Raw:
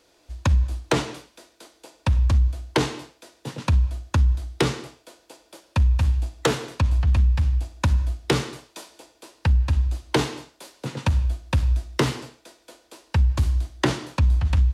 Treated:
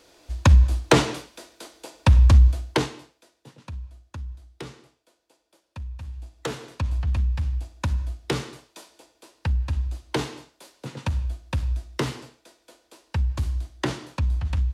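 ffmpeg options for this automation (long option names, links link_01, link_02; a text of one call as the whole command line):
ffmpeg -i in.wav -af "volume=16.5dB,afade=type=out:start_time=2.49:duration=0.4:silence=0.266073,afade=type=out:start_time=2.89:duration=0.67:silence=0.316228,afade=type=in:start_time=6.07:duration=0.84:silence=0.266073" out.wav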